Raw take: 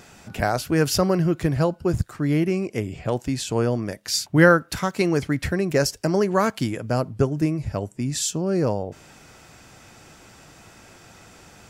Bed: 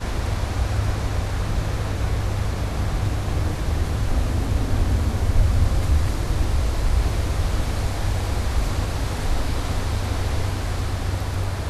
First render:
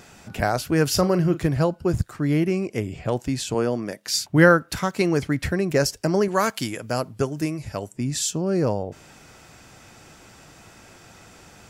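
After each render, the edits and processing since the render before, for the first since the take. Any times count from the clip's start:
0:00.92–0:01.48: double-tracking delay 39 ms −13 dB
0:03.54–0:04.12: high-pass filter 170 Hz
0:06.28–0:07.93: spectral tilt +2 dB per octave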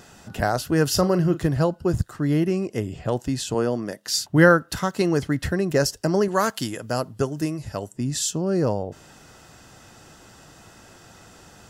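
notch filter 2,300 Hz, Q 5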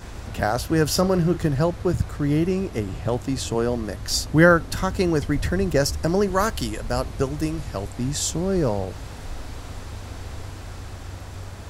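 mix in bed −11.5 dB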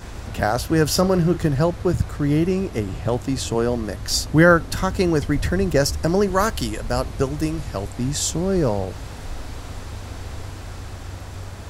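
level +2 dB
brickwall limiter −3 dBFS, peak gain reduction 2.5 dB

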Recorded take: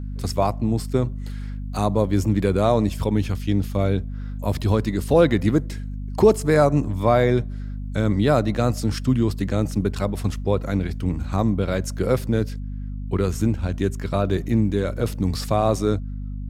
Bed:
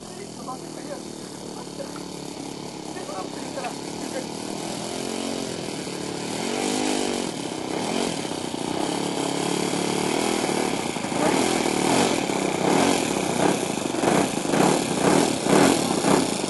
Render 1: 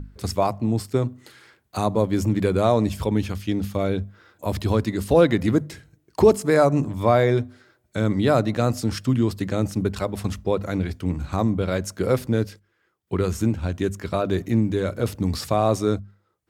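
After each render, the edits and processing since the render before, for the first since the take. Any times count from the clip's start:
mains-hum notches 50/100/150/200/250 Hz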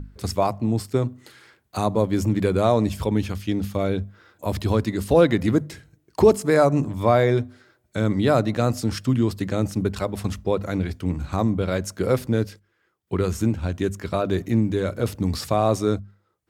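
no processing that can be heard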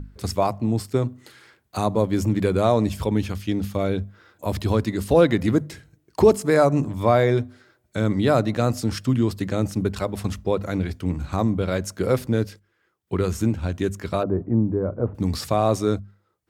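0:14.23–0:15.15: low-pass filter 1,100 Hz 24 dB per octave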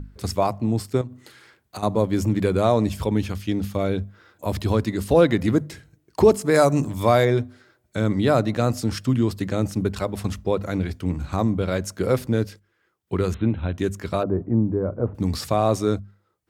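0:01.01–0:01.83: downward compressor 12 to 1, threshold −29 dBFS
0:06.54–0:07.25: high-shelf EQ 3,800 Hz +11 dB
0:13.34–0:13.78: linear-phase brick-wall low-pass 4,100 Hz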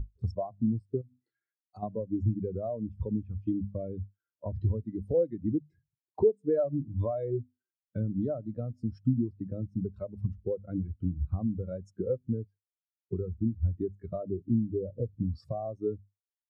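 downward compressor 10 to 1, threshold −27 dBFS, peak gain reduction 17.5 dB
every bin expanded away from the loudest bin 2.5 to 1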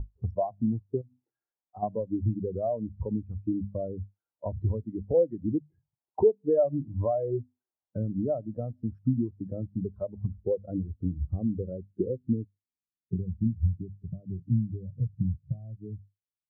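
low-pass filter sweep 840 Hz → 150 Hz, 0:10.14–0:13.82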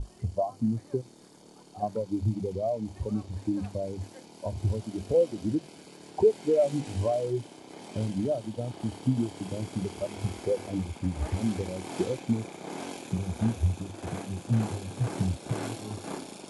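mix in bed −18.5 dB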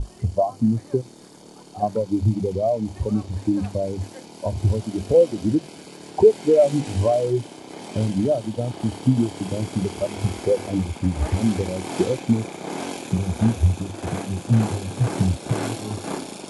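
level +8 dB

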